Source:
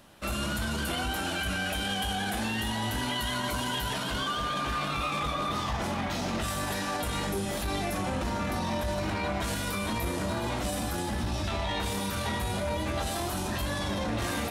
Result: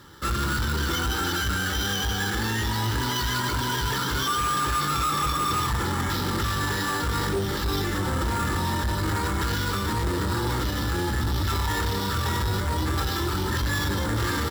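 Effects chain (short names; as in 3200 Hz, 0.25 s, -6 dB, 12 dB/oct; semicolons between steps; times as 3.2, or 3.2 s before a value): HPF 62 Hz 12 dB/oct; high shelf 7400 Hz -10 dB; fixed phaser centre 2500 Hz, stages 6; comb 2.3 ms, depth 57%; sample-rate reducer 9000 Hz, jitter 0%; added harmonics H 5 -12 dB, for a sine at -20.5 dBFS; gain +3.5 dB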